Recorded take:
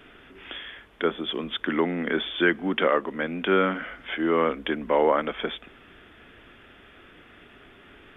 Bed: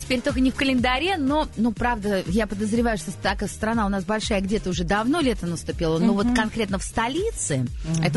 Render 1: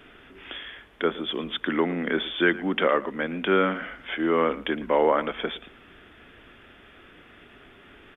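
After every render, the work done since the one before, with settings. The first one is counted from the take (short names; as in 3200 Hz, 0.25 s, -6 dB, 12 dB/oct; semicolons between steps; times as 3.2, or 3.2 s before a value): echo 0.113 s -18 dB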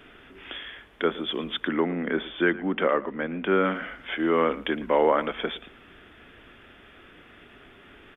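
1.68–3.65 air absorption 330 m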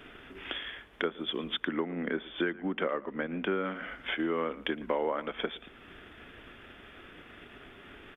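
transient shaper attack +4 dB, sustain -3 dB; compressor 2.5:1, threshold -32 dBFS, peak gain reduction 11.5 dB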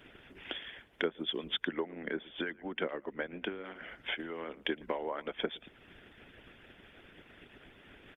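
harmonic-percussive split harmonic -17 dB; bell 1200 Hz -6.5 dB 0.43 oct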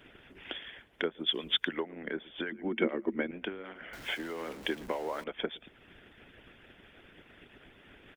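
1.26–1.83 high shelf 2300 Hz +9 dB; 2.52–3.31 small resonant body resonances 230/330/2200 Hz, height 15 dB, ringing for 70 ms; 3.93–5.24 zero-crossing step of -43.5 dBFS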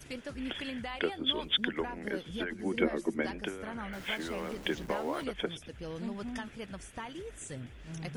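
add bed -18.5 dB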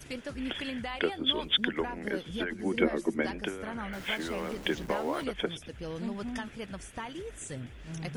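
gain +2.5 dB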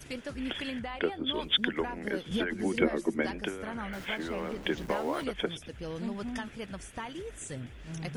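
0.79–1.34 high shelf 2700 Hz -9 dB; 2.31–2.82 three-band squash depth 100%; 4.04–4.77 high shelf 3600 Hz -> 5500 Hz -9 dB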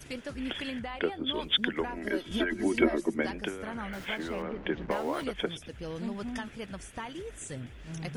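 1.94–3 comb 3.1 ms; 4.42–4.91 LPF 2300 Hz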